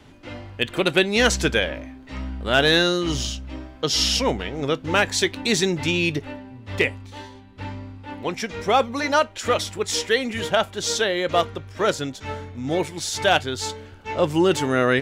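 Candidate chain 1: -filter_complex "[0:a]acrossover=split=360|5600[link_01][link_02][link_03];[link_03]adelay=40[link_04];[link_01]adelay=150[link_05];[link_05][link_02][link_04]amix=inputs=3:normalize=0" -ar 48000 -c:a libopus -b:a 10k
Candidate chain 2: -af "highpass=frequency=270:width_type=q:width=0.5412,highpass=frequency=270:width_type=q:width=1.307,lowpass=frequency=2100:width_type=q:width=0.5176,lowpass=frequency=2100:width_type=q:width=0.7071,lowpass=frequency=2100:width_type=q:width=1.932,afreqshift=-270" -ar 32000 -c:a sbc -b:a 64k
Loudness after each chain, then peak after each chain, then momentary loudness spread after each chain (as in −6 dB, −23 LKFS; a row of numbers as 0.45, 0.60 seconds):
−24.0, −25.0 LKFS; −4.0, −7.5 dBFS; 16, 21 LU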